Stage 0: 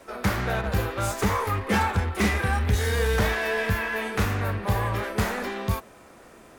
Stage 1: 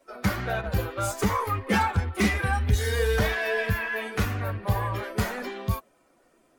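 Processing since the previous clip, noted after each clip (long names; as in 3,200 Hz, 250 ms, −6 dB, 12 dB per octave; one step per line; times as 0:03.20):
spectral dynamics exaggerated over time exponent 1.5
level +2 dB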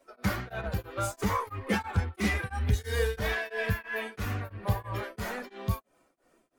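tremolo along a rectified sine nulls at 3 Hz
level −2 dB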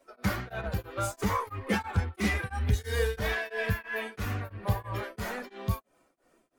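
no processing that can be heard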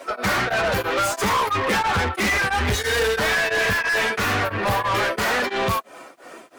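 mid-hump overdrive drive 36 dB, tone 4,000 Hz, clips at −13.5 dBFS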